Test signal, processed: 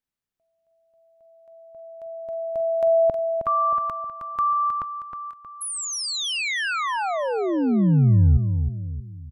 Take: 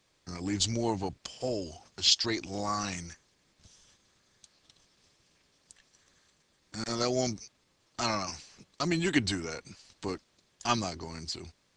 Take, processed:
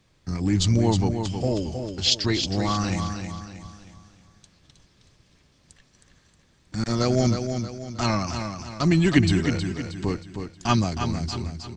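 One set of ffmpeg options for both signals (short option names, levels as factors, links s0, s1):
-af "bass=f=250:g=11,treble=f=4000:g=-4,aecho=1:1:315|630|945|1260|1575:0.447|0.183|0.0751|0.0308|0.0126,volume=1.68"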